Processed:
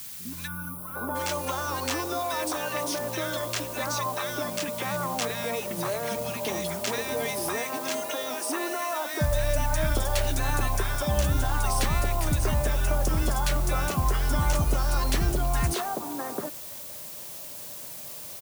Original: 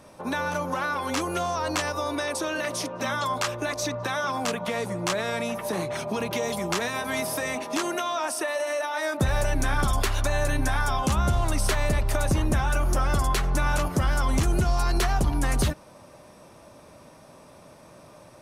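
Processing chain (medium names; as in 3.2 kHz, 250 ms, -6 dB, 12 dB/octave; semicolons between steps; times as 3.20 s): three bands offset in time lows, highs, mids 120/760 ms, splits 240/1500 Hz; added noise blue -39 dBFS; time-frequency box 0.47–1.16 s, 1.5–9.2 kHz -18 dB; trim -1 dB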